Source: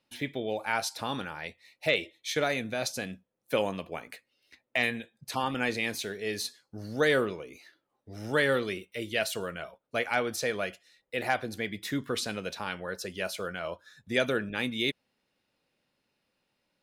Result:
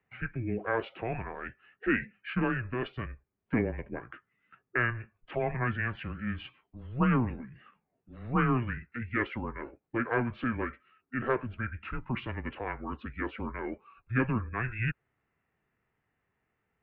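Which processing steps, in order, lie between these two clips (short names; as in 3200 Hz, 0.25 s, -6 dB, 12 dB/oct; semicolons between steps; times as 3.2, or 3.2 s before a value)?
formant shift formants -5 st; mistuned SSB -120 Hz 160–2600 Hz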